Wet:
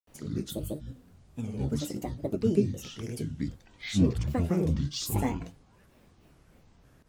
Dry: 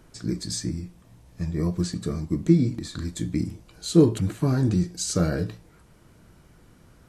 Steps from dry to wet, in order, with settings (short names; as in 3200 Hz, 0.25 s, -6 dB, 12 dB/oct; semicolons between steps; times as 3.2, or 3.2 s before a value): grains 0.222 s, grains 13/s, pitch spread up and down by 12 st; gain -2.5 dB